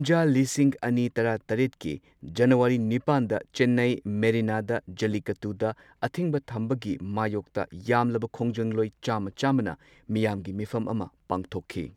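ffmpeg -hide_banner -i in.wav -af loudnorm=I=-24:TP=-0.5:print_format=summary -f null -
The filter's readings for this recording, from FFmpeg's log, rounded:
Input Integrated:    -27.5 LUFS
Input True Peak:      -8.5 dBTP
Input LRA:             4.7 LU
Input Threshold:     -37.6 LUFS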